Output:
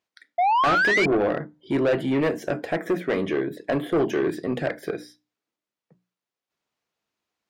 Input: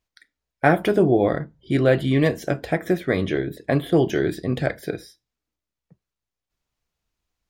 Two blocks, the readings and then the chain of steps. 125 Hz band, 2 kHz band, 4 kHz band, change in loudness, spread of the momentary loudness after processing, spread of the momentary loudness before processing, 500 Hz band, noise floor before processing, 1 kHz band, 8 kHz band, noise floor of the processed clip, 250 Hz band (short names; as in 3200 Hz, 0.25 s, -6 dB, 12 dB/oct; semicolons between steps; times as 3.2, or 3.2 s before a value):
-9.5 dB, +3.0 dB, +1.0 dB, -2.0 dB, 11 LU, 9 LU, -2.5 dB, under -85 dBFS, +4.5 dB, n/a, under -85 dBFS, -3.5 dB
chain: dynamic EQ 3900 Hz, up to -7 dB, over -49 dBFS, Q 1.7; notches 60/120/180/240/300 Hz; painted sound rise, 0.38–1.06, 680–2400 Hz -18 dBFS; HPF 220 Hz 12 dB/oct; soft clip -19 dBFS, distortion -9 dB; high shelf 6600 Hz -9.5 dB; gain +2.5 dB